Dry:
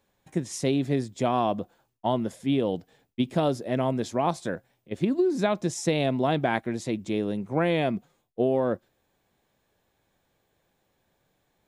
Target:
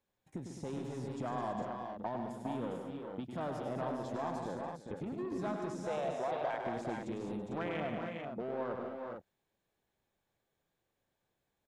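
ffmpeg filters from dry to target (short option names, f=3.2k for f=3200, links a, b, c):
-filter_complex "[0:a]asettb=1/sr,asplit=3[a][b][c];[a]atrim=end=4.384[d];[b]atrim=start=4.38:end=4.97,asetpts=PTS-STARTPTS,afade=t=in:d=0.004:c=qsin,afade=t=out:st=0.586:d=0.004:c=qsin,lowpass=8.8k[e];[c]atrim=start=4.966[f];[d][e]acrossfade=d=0.004:c1=hsin:c2=qsin[g];[g][f]acrossfade=d=0.004:c1=qsin:c2=hsin,asettb=1/sr,asplit=3[h][i][j];[h]atrim=end=5.744[k];[i]atrim=start=5.74:end=6.65,asetpts=PTS-STARTPTS,afade=t=in:d=0.004:c=qsin,afade=t=out:st=0.906:d=0.004:c=qsin,lowshelf=f=390:t=q:w=1.5:g=-13.5[l];[j]atrim=start=6.646[m];[k][l]acrossfade=d=0.004:c1=hsin:c2=qsin[n];[n][m]acrossfade=d=0.004:c1=qsin:c2=hsin,afwtdn=0.0355,asplit=2[o][p];[p]asoftclip=type=tanh:threshold=-26.5dB,volume=-5.5dB[q];[o][q]amix=inputs=2:normalize=0,alimiter=limit=-20dB:level=0:latency=1,acrossover=split=860|3400[r][s][t];[r]acompressor=threshold=-41dB:ratio=4[u];[s]acompressor=threshold=-39dB:ratio=4[v];[t]acompressor=threshold=-59dB:ratio=4[w];[u][v][w]amix=inputs=3:normalize=0,asplit=2[x][y];[y]aecho=0:1:102|148|211|332|407|449:0.473|0.355|0.355|0.15|0.473|0.447[z];[x][z]amix=inputs=2:normalize=0,volume=-1.5dB"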